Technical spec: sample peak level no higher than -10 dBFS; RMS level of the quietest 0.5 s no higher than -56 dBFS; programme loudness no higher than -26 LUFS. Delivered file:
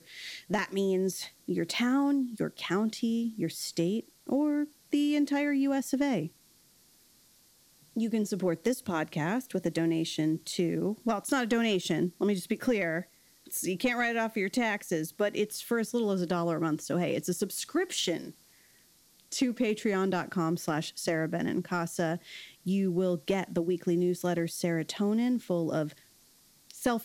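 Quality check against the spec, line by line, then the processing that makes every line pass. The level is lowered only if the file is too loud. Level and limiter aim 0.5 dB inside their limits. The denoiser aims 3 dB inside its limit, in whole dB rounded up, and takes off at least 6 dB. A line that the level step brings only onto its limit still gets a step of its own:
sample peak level -16.5 dBFS: OK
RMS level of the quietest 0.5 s -62 dBFS: OK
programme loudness -30.5 LUFS: OK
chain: none

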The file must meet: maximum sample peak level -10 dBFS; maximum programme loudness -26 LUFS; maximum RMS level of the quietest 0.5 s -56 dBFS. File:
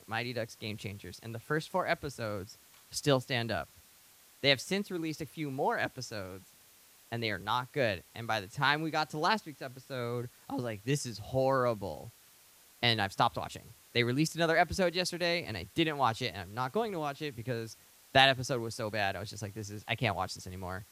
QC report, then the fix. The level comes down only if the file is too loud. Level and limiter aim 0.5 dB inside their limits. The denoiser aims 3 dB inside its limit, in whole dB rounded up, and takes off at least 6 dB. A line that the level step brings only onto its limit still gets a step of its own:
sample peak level -6.5 dBFS: fail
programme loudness -32.5 LUFS: OK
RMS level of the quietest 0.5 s -60 dBFS: OK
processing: limiter -10.5 dBFS

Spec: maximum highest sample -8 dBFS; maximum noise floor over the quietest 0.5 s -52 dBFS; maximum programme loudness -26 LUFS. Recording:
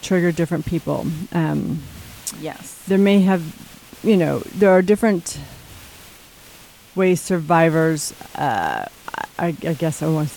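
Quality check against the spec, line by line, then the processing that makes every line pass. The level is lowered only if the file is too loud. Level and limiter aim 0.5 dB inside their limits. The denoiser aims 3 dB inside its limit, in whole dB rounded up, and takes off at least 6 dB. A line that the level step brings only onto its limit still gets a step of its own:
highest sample -4.5 dBFS: fail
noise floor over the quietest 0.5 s -45 dBFS: fail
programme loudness -19.5 LUFS: fail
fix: denoiser 6 dB, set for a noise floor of -45 dBFS; gain -7 dB

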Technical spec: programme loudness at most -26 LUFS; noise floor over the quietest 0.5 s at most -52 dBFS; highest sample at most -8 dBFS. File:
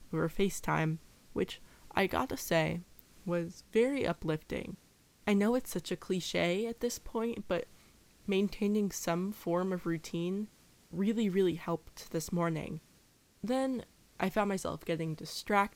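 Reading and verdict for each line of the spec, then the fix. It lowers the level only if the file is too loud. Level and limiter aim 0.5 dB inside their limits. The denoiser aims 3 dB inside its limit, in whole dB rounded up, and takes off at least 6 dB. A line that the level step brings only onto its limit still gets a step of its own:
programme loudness -34.0 LUFS: OK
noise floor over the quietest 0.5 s -65 dBFS: OK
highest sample -13.5 dBFS: OK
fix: none

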